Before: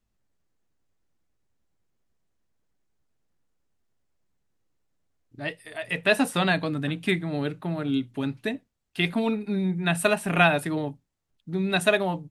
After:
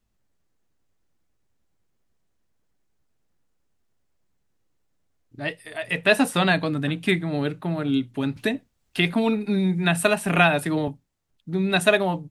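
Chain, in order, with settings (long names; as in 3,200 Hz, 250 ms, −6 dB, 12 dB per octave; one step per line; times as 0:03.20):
0:08.36–0:10.88: multiband upward and downward compressor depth 40%
level +3 dB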